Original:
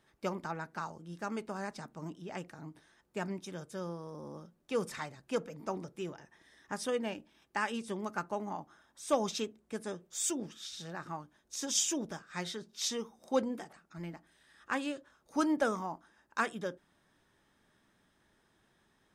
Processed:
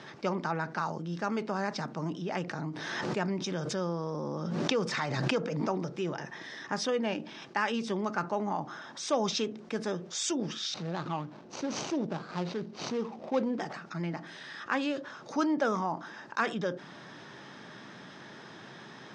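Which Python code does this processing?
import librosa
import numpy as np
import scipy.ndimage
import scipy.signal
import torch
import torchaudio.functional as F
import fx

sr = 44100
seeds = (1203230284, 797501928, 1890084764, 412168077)

y = fx.pre_swell(x, sr, db_per_s=52.0, at=(2.47, 5.78), fade=0.02)
y = fx.median_filter(y, sr, points=25, at=(10.74, 13.6))
y = scipy.signal.sosfilt(scipy.signal.ellip(3, 1.0, 50, [130.0, 5600.0], 'bandpass', fs=sr, output='sos'), y)
y = fx.env_flatten(y, sr, amount_pct=50)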